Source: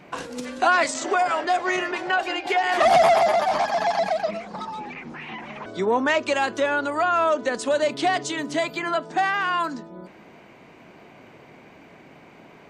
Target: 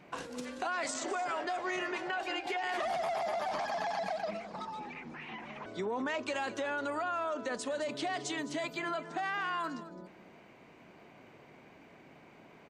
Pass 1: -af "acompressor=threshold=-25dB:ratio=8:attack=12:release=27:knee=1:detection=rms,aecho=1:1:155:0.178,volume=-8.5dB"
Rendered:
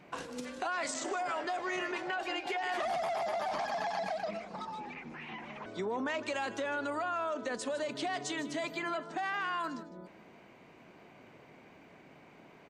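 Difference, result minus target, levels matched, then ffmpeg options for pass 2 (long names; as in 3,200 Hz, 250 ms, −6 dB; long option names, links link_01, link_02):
echo 57 ms early
-af "acompressor=threshold=-25dB:ratio=8:attack=12:release=27:knee=1:detection=rms,aecho=1:1:212:0.178,volume=-8.5dB"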